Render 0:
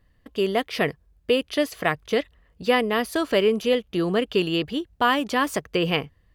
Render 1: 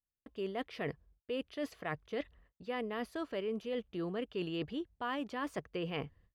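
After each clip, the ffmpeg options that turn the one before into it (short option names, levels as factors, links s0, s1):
-af "agate=range=0.0224:threshold=0.002:ratio=16:detection=peak,lowpass=f=2500:p=1,areverse,acompressor=threshold=0.0316:ratio=5,areverse,volume=0.531"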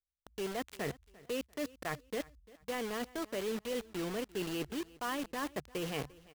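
-filter_complex "[0:a]acrossover=split=110[s0][s1];[s0]asplit=2[s2][s3];[s3]adelay=15,volume=0.794[s4];[s2][s4]amix=inputs=2:normalize=0[s5];[s1]acrusher=bits=6:mix=0:aa=0.000001[s6];[s5][s6]amix=inputs=2:normalize=0,aecho=1:1:346|692:0.0841|0.0261"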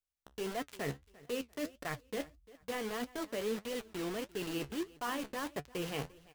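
-af "flanger=delay=6.8:depth=7.8:regen=53:speed=1.6:shape=sinusoidal,volume=1.5"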